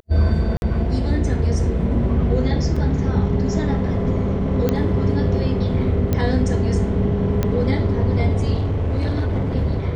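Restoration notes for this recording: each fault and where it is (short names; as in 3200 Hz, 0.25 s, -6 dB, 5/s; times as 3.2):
0.57–0.62 gap 51 ms
2.76 gap 4.6 ms
4.69 pop -7 dBFS
6.13 pop -8 dBFS
7.43 pop -8 dBFS
8.54–9.55 clipped -17 dBFS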